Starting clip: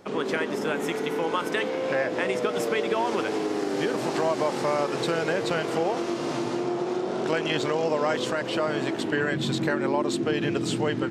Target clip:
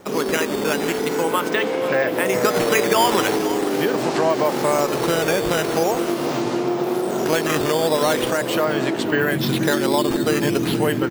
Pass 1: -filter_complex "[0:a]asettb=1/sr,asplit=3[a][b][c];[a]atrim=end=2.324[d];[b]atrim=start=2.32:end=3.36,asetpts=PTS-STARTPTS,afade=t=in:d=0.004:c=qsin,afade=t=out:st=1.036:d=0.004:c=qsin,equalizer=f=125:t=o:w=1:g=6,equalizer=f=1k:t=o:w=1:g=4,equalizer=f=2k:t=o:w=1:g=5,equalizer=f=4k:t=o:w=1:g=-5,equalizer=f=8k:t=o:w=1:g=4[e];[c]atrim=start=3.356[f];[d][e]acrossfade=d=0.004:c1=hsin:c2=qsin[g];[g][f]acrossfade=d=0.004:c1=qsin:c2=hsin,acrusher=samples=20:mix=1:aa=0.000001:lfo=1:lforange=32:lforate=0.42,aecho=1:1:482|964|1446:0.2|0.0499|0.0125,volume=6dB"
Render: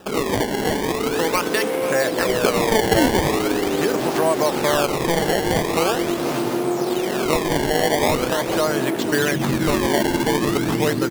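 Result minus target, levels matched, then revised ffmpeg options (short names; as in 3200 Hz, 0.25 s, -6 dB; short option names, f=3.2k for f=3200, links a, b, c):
decimation with a swept rate: distortion +10 dB
-filter_complex "[0:a]asettb=1/sr,asplit=3[a][b][c];[a]atrim=end=2.324[d];[b]atrim=start=2.32:end=3.36,asetpts=PTS-STARTPTS,afade=t=in:d=0.004:c=qsin,afade=t=out:st=1.036:d=0.004:c=qsin,equalizer=f=125:t=o:w=1:g=6,equalizer=f=1k:t=o:w=1:g=4,equalizer=f=2k:t=o:w=1:g=5,equalizer=f=4k:t=o:w=1:g=-5,equalizer=f=8k:t=o:w=1:g=4[e];[c]atrim=start=3.356[f];[d][e]acrossfade=d=0.004:c1=hsin:c2=qsin[g];[g][f]acrossfade=d=0.004:c1=qsin:c2=hsin,acrusher=samples=6:mix=1:aa=0.000001:lfo=1:lforange=9.6:lforate=0.42,aecho=1:1:482|964|1446:0.2|0.0499|0.0125,volume=6dB"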